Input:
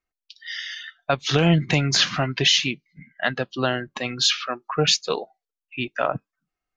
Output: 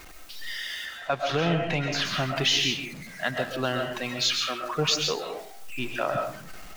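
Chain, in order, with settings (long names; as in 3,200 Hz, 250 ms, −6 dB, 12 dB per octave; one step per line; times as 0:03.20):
converter with a step at zero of −33 dBFS
0:00.85–0:02.05: mid-hump overdrive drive 10 dB, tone 1,400 Hz, clips at −5.5 dBFS
comb and all-pass reverb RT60 0.46 s, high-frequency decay 0.6×, pre-delay 90 ms, DRR 3 dB
level −6 dB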